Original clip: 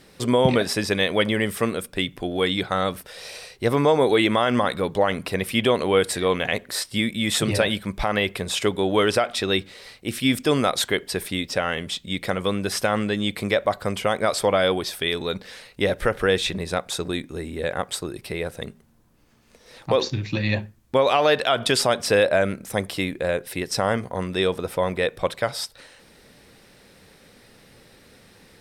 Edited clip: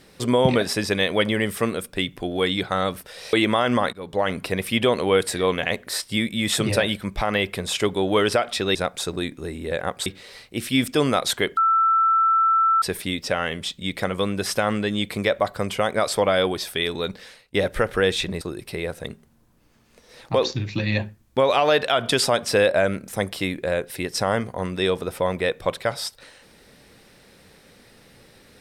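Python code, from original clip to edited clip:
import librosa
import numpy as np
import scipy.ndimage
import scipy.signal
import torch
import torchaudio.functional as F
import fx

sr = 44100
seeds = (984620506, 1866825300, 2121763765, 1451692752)

y = fx.edit(x, sr, fx.cut(start_s=3.33, length_s=0.82),
    fx.fade_in_from(start_s=4.75, length_s=0.37, floor_db=-22.5),
    fx.insert_tone(at_s=11.08, length_s=1.25, hz=1330.0, db=-15.0),
    fx.fade_out_to(start_s=15.4, length_s=0.4, floor_db=-18.0),
    fx.move(start_s=16.67, length_s=1.31, to_s=9.57), tone=tone)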